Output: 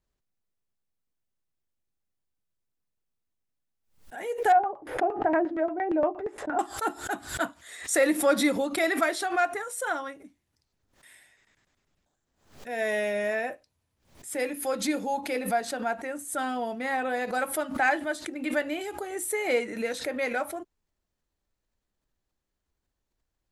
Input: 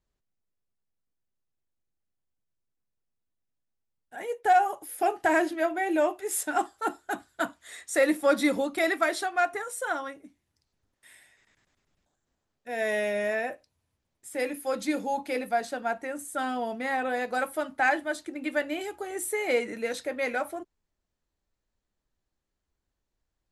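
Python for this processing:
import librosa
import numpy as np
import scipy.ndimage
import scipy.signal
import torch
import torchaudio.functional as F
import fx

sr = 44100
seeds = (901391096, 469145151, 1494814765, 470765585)

y = fx.filter_lfo_lowpass(x, sr, shape='saw_down', hz=8.6, low_hz=410.0, high_hz=1700.0, q=0.91, at=(4.52, 6.59))
y = fx.pre_swell(y, sr, db_per_s=120.0)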